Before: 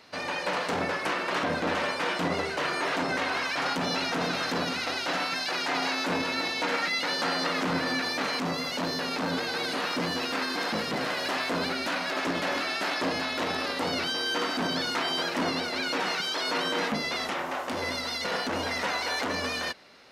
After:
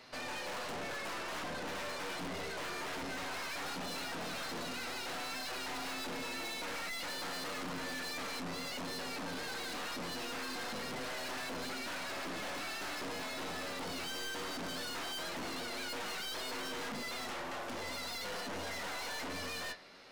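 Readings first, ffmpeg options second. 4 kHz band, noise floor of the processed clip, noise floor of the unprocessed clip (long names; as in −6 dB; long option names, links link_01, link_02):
−11.0 dB, −41 dBFS, −33 dBFS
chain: -af "flanger=delay=7.9:depth=3.1:regen=57:speed=0.18:shape=sinusoidal,aeval=exprs='(mod(11.9*val(0)+1,2)-1)/11.9':channel_layout=same,aeval=exprs='(tanh(141*val(0)+0.4)-tanh(0.4))/141':channel_layout=same,volume=3.5dB"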